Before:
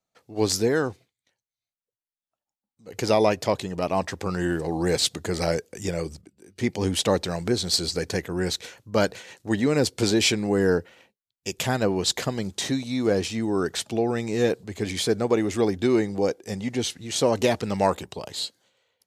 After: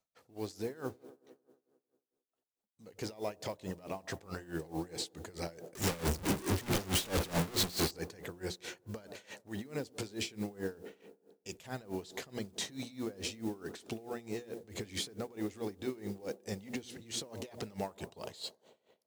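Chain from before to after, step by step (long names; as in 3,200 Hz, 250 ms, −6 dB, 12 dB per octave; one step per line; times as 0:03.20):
0:05.75–0:07.91: sign of each sample alone
downward compressor, threshold −27 dBFS, peak gain reduction 11.5 dB
brickwall limiter −25.5 dBFS, peak gain reduction 11 dB
mains-hum notches 60/120/180/240/300/360 Hz
delay with a band-pass on its return 90 ms, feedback 72%, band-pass 450 Hz, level −12 dB
noise that follows the level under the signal 22 dB
tremolo with a sine in dB 4.6 Hz, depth 20 dB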